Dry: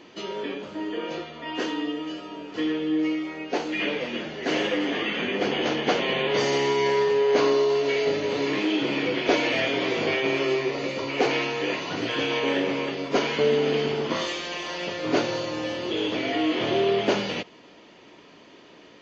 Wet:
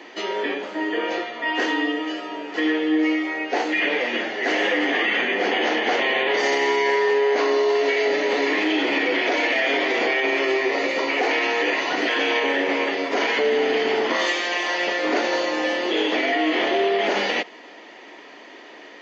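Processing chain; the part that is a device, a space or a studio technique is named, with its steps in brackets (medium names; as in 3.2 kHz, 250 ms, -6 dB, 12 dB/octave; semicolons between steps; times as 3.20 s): laptop speaker (high-pass 260 Hz 24 dB/octave; peaking EQ 770 Hz +6.5 dB 0.49 oct; peaking EQ 1.9 kHz +10 dB 0.42 oct; peak limiter -17.5 dBFS, peak gain reduction 12 dB); trim +5 dB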